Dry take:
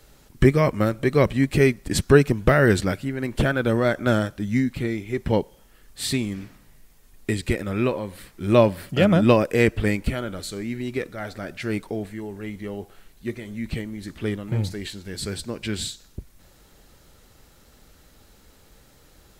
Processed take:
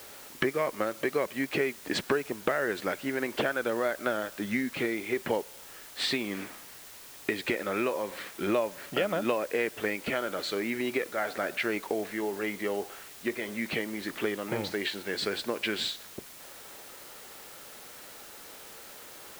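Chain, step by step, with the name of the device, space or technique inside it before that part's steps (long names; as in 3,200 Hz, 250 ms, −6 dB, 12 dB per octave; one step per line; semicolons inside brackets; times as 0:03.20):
baby monitor (band-pass filter 440–3,100 Hz; downward compressor 6 to 1, threshold −35 dBFS, peak gain reduction 20.5 dB; white noise bed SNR 16 dB)
level +8.5 dB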